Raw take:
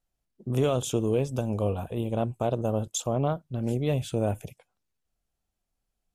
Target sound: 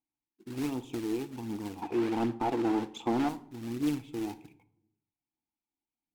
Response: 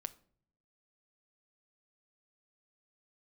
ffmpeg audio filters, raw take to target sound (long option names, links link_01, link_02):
-filter_complex "[0:a]asplit=3[link_01][link_02][link_03];[link_01]bandpass=frequency=300:width_type=q:width=8,volume=0dB[link_04];[link_02]bandpass=frequency=870:width_type=q:width=8,volume=-6dB[link_05];[link_03]bandpass=frequency=2240:width_type=q:width=8,volume=-9dB[link_06];[link_04][link_05][link_06]amix=inputs=3:normalize=0,acrusher=bits=3:mode=log:mix=0:aa=0.000001,aphaser=in_gain=1:out_gain=1:delay=3:decay=0.36:speed=1.3:type=triangular,asettb=1/sr,asplit=3[link_07][link_08][link_09];[link_07]atrim=end=1.824[link_10];[link_08]atrim=start=1.82:end=3.29,asetpts=PTS-STARTPTS,afade=type=in:duration=0.004:curve=qsin,afade=type=out:start_time=1.466:duration=0.004:curve=qsin,asplit=2[link_11][link_12];[link_12]highpass=frequency=720:poles=1,volume=26dB,asoftclip=type=tanh:threshold=-21.5dB[link_13];[link_11][link_13]amix=inputs=2:normalize=0,lowpass=frequency=1100:poles=1,volume=-6dB[link_14];[link_09]atrim=start=3.286[link_15];[link_10][link_14]acrossfade=duration=0.004:curve1=hsin:curve2=qsin[link_16];[link_16][link_15]acrossfade=duration=0.004:curve1=qsin:curve2=hsin[link_17];[1:a]atrim=start_sample=2205,asetrate=34398,aresample=44100[link_18];[link_17][link_18]afir=irnorm=-1:irlink=0,volume=5.5dB"